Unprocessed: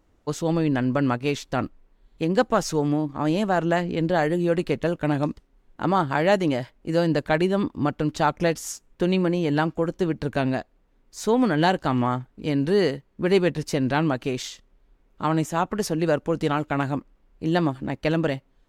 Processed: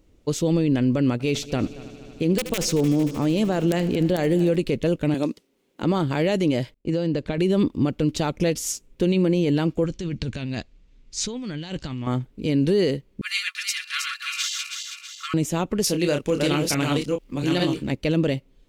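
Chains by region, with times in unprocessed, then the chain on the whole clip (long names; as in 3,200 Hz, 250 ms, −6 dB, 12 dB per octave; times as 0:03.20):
0:01.12–0:04.56: wrap-around overflow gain 9 dB + echo machine with several playback heads 76 ms, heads first and third, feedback 75%, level −22 dB
0:05.14–0:05.83: high-pass filter 270 Hz + high-shelf EQ 5,600 Hz +4 dB
0:06.74–0:07.38: downward compressor 12 to 1, threshold −23 dBFS + high-frequency loss of the air 75 metres + downward expander −47 dBFS
0:09.84–0:12.07: low-pass filter 7,400 Hz 24 dB per octave + parametric band 470 Hz −11 dB 2.4 octaves + compressor whose output falls as the input rises −34 dBFS
0:13.21–0:15.34: feedback delay that plays each chunk backwards 162 ms, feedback 68%, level −3.5 dB + linear-phase brick-wall high-pass 1,100 Hz + comb filter 2.9 ms, depth 73%
0:15.84–0:17.92: delay that plays each chunk backwards 439 ms, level −3 dB + tilt shelving filter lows −5 dB, about 1,100 Hz + double-tracking delay 28 ms −6.5 dB
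whole clip: flat-topped bell 1,100 Hz −9.5 dB; brickwall limiter −17.5 dBFS; level +5.5 dB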